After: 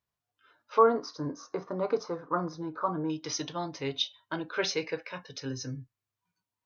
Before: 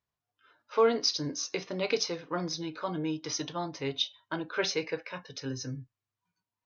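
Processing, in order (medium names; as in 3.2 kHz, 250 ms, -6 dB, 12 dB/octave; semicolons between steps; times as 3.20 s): 0.78–3.10 s: resonant high shelf 1.8 kHz -14 dB, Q 3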